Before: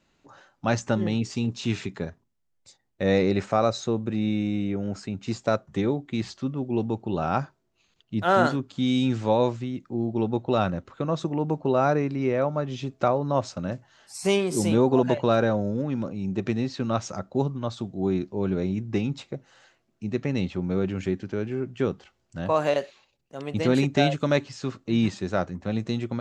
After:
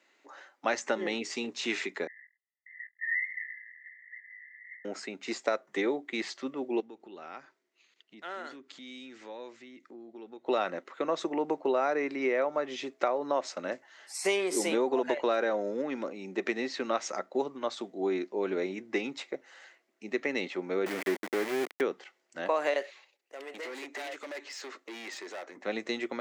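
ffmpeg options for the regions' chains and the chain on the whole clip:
ffmpeg -i in.wav -filter_complex "[0:a]asettb=1/sr,asplit=3[link_01][link_02][link_03];[link_01]atrim=end=2.074[link_04];[link_02]atrim=start=2.07:end=4.85,asetpts=PTS-STARTPTS,afade=type=in:duration=0.004:curve=qsin,afade=type=out:start_time=2.776:duration=0.004:curve=qsin,aeval=exprs='val(0)+0.5*0.0211*sgn(val(0))':channel_layout=same,asuperpass=centerf=1900:order=20:qfactor=5.2,flanger=delay=18:depth=7.5:speed=1.4[link_05];[link_03]atrim=start=4.846[link_06];[link_04][link_05]acrossfade=duration=0.004:curve1=hsin:curve2=qsin[link_07];[link_07][link_06]acrossfade=duration=0.004:curve1=qsin:curve2=hsin,asettb=1/sr,asplit=3[link_08][link_09][link_10];[link_08]atrim=end=6.804[link_11];[link_09]atrim=start=6.8:end=10.46,asetpts=PTS-STARTPTS,afade=type=in:duration=0.004:curve=qsin,afade=type=out:start_time=3.656:duration=0.004:curve=qsin,lowpass=8400,equalizer=frequency=710:width_type=o:width=1.5:gain=-6.5,acompressor=threshold=-42dB:ratio=3:attack=3.2:release=140:knee=1:detection=peak[link_12];[link_10]atrim=start=10.456[link_13];[link_11][link_12]acrossfade=duration=0.004:curve1=hsin:curve2=qsin[link_14];[link_14][link_13]acrossfade=duration=0.004:curve1=qsin:curve2=hsin,asettb=1/sr,asplit=3[link_15][link_16][link_17];[link_15]atrim=end=20.864[link_18];[link_16]atrim=start=20.86:end=21.81,asetpts=PTS-STARTPTS,afade=type=in:duration=0.004:curve=qsin,afade=type=out:start_time=0.946:duration=0.004:curve=qsin,lowpass=2400,equalizer=frequency=75:width=0.61:gain=10,aeval=exprs='val(0)*gte(abs(val(0)),0.0355)':channel_layout=same[link_19];[link_17]atrim=start=21.806[link_20];[link_18][link_19]acrossfade=duration=0.004:curve1=hsin:curve2=qsin[link_21];[link_21][link_20]acrossfade=duration=0.004:curve1=qsin:curve2=hsin,asettb=1/sr,asplit=3[link_22][link_23][link_24];[link_22]atrim=end=22.824[link_25];[link_23]atrim=start=22.82:end=25.57,asetpts=PTS-STARTPTS,afade=type=in:duration=0.004:curve=qsin,afade=type=out:start_time=2.746:duration=0.004:curve=qsin,highpass=350,acompressor=threshold=-37dB:ratio=2:attack=3.2:release=140:knee=1:detection=peak,asoftclip=type=hard:threshold=-37.5dB[link_26];[link_24]atrim=start=25.566[link_27];[link_25][link_26]acrossfade=duration=0.004:curve1=hsin:curve2=qsin[link_28];[link_28][link_27]acrossfade=duration=0.004:curve1=qsin:curve2=hsin,highpass=frequency=320:width=0.5412,highpass=frequency=320:width=1.3066,equalizer=frequency=2000:width=3.5:gain=10,acompressor=threshold=-24dB:ratio=6" out.wav

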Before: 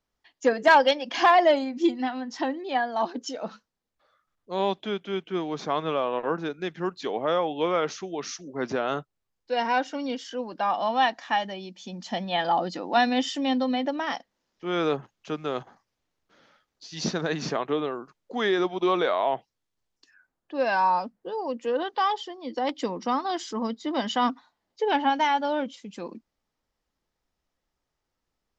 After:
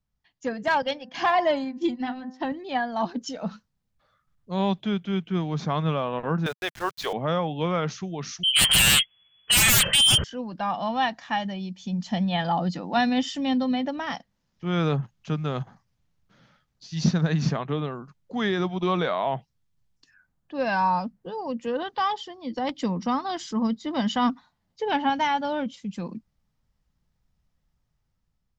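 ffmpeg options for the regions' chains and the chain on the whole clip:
ffmpeg -i in.wav -filter_complex "[0:a]asettb=1/sr,asplit=3[link_01][link_02][link_03];[link_01]atrim=end=0.824[link_04];[link_02]atrim=start=0.82:end=2.52,asetpts=PTS-STARTPTS,afade=type=in:duration=0.004:curve=qsin,afade=type=out:start_time=1.696:duration=0.004:curve=qsin,agate=range=-33dB:threshold=-30dB:ratio=3:release=100:detection=peak,highshelf=frequency=6800:gain=-4.5,bandreject=frequency=257.2:width_type=h:width=4,bandreject=frequency=514.4:width_type=h:width=4,bandreject=frequency=771.6:width_type=h:width=4,bandreject=frequency=1028.8:width_type=h:width=4,bandreject=frequency=1286:width_type=h:width=4,bandreject=frequency=1543.2:width_type=h:width=4,bandreject=frequency=1800.4:width_type=h:width=4[link_05];[link_03]atrim=start=2.516[link_06];[link_04][link_05]acrossfade=duration=0.004:curve1=hsin:curve2=qsin[link_07];[link_07][link_06]acrossfade=duration=0.004:curve1=qsin:curve2=hsin,asettb=1/sr,asplit=3[link_08][link_09][link_10];[link_08]atrim=end=6.464[link_11];[link_09]atrim=start=6.46:end=7.13,asetpts=PTS-STARTPTS,afade=type=in:duration=0.004:curve=qsin,afade=type=out:start_time=0.666:duration=0.004:curve=qsin,highpass=frequency=460:width=0.5412,highpass=frequency=460:width=1.3066,acontrast=83,aeval=exprs='val(0)*gte(abs(val(0)),0.0141)':channel_layout=same[link_12];[link_10]atrim=start=7.126[link_13];[link_11][link_12]acrossfade=duration=0.004:curve1=hsin:curve2=qsin[link_14];[link_14][link_13]acrossfade=duration=0.004:curve1=qsin:curve2=hsin,asettb=1/sr,asplit=3[link_15][link_16][link_17];[link_15]atrim=end=8.434[link_18];[link_16]atrim=start=8.43:end=10.24,asetpts=PTS-STARTPTS,afade=type=in:duration=0.004:curve=qsin,afade=type=out:start_time=1.806:duration=0.004:curve=qsin,bandreject=frequency=520:width=11,lowpass=frequency=2900:width_type=q:width=0.5098,lowpass=frequency=2900:width_type=q:width=0.6013,lowpass=frequency=2900:width_type=q:width=0.9,lowpass=frequency=2900:width_type=q:width=2.563,afreqshift=-3400,aeval=exprs='0.211*sin(PI/2*7.08*val(0)/0.211)':channel_layout=same[link_19];[link_17]atrim=start=10.236[link_20];[link_18][link_19]acrossfade=duration=0.004:curve1=hsin:curve2=qsin[link_21];[link_21][link_20]acrossfade=duration=0.004:curve1=qsin:curve2=hsin,lowshelf=frequency=230:width_type=q:width=1.5:gain=12.5,dynaudnorm=framelen=460:gausssize=5:maxgain=7dB,volume=-7dB" out.wav

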